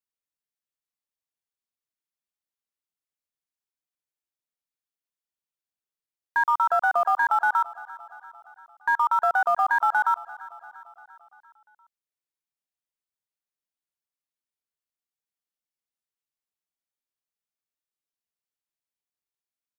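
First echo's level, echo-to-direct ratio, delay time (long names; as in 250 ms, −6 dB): −19.5 dB, −17.5 dB, 345 ms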